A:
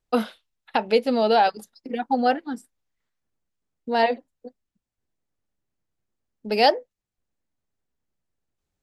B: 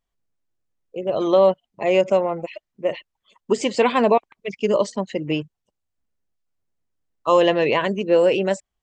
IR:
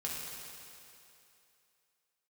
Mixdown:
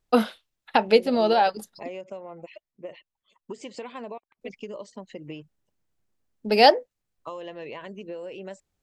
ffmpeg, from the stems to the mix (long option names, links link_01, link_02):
-filter_complex "[0:a]volume=2.5dB,asplit=3[link_01][link_02][link_03];[link_01]atrim=end=1.89,asetpts=PTS-STARTPTS,afade=type=out:start_time=1.886:duration=0.004:curve=hsin[link_04];[link_02]atrim=start=1.89:end=4.41,asetpts=PTS-STARTPTS,volume=0[link_05];[link_03]atrim=start=4.41,asetpts=PTS-STARTPTS,afade=type=in:duration=0.004:curve=hsin[link_06];[link_04][link_05][link_06]concat=n=3:v=0:a=1[link_07];[1:a]acompressor=threshold=-26dB:ratio=8,volume=-8.5dB,asplit=2[link_08][link_09];[link_09]apad=whole_len=389148[link_10];[link_07][link_10]sidechaincompress=threshold=-38dB:ratio=8:attack=16:release=114[link_11];[link_11][link_08]amix=inputs=2:normalize=0"